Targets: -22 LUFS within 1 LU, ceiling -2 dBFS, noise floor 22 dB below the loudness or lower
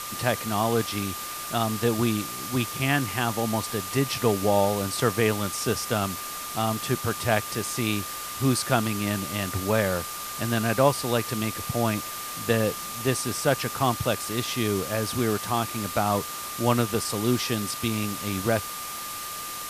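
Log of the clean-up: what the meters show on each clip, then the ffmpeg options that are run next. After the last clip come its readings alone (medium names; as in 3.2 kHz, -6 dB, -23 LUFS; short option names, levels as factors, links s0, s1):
steady tone 1.2 kHz; tone level -37 dBFS; noise floor -35 dBFS; noise floor target -48 dBFS; loudness -26.0 LUFS; peak level -5.5 dBFS; loudness target -22.0 LUFS
-> -af "bandreject=f=1200:w=30"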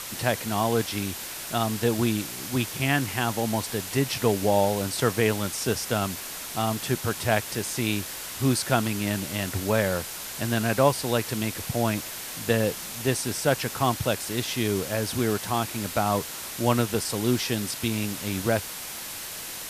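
steady tone not found; noise floor -37 dBFS; noise floor target -49 dBFS
-> -af "afftdn=nr=12:nf=-37"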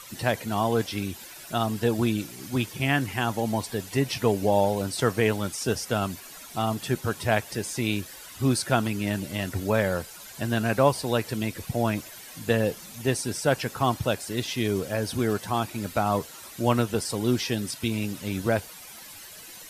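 noise floor -44 dBFS; noise floor target -49 dBFS
-> -af "afftdn=nr=6:nf=-44"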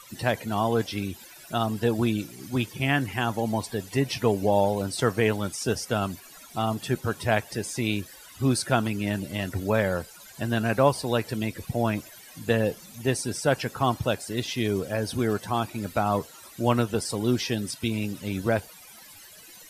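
noise floor -48 dBFS; noise floor target -49 dBFS
-> -af "afftdn=nr=6:nf=-48"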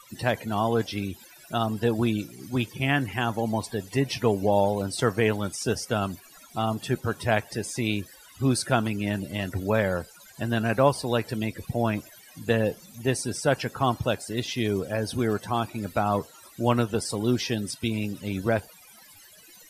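noise floor -52 dBFS; loudness -27.0 LUFS; peak level -6.0 dBFS; loudness target -22.0 LUFS
-> -af "volume=1.78,alimiter=limit=0.794:level=0:latency=1"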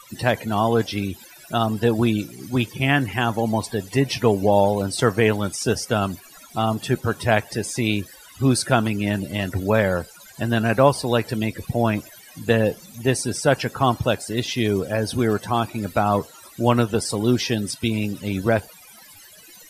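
loudness -22.0 LUFS; peak level -2.0 dBFS; noise floor -47 dBFS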